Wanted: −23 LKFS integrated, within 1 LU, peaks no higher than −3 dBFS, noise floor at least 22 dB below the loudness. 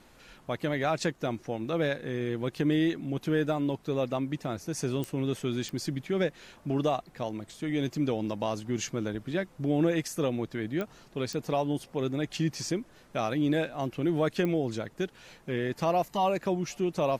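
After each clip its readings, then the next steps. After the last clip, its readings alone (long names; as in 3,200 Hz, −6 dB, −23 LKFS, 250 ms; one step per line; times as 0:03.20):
number of clicks 5; integrated loudness −31.0 LKFS; sample peak −15.5 dBFS; target loudness −23.0 LKFS
→ click removal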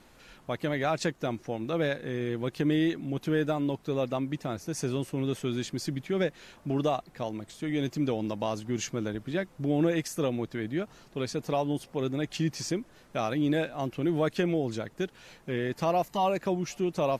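number of clicks 0; integrated loudness −31.0 LKFS; sample peak −15.5 dBFS; target loudness −23.0 LKFS
→ level +8 dB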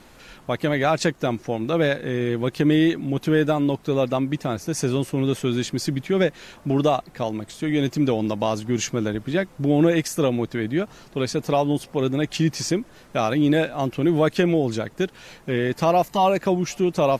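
integrated loudness −23.0 LKFS; sample peak −7.5 dBFS; background noise floor −49 dBFS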